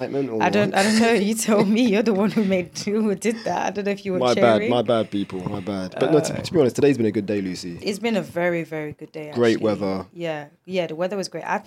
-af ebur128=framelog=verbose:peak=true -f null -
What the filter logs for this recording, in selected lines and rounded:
Integrated loudness:
  I:         -21.6 LUFS
  Threshold: -31.7 LUFS
Loudness range:
  LRA:         4.8 LU
  Threshold: -41.8 LUFS
  LRA low:   -24.6 LUFS
  LRA high:  -19.8 LUFS
True peak:
  Peak:       -3.9 dBFS